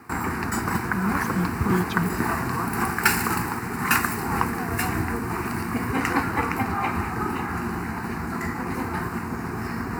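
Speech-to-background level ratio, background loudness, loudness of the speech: -3.0 dB, -26.0 LUFS, -29.0 LUFS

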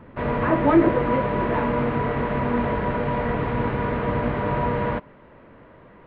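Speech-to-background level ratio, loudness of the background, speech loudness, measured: 1.5 dB, -24.5 LUFS, -23.0 LUFS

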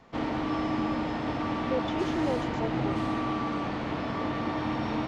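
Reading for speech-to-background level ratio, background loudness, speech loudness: -4.5 dB, -30.5 LUFS, -35.0 LUFS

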